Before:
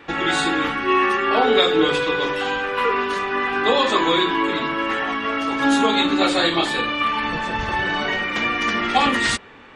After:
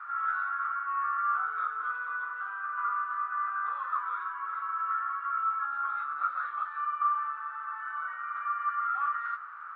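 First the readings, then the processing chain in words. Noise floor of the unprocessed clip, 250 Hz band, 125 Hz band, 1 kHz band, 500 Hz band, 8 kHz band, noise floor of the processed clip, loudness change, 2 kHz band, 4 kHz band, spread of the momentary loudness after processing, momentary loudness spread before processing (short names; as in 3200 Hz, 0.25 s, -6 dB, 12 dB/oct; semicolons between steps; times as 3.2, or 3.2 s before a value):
-27 dBFS, under -40 dB, under -40 dB, -8.0 dB, under -40 dB, under -40 dB, -41 dBFS, -12.0 dB, -14.0 dB, under -40 dB, 6 LU, 6 LU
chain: delta modulation 64 kbps, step -26 dBFS; soft clip -14 dBFS, distortion -15 dB; Butterworth band-pass 1300 Hz, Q 5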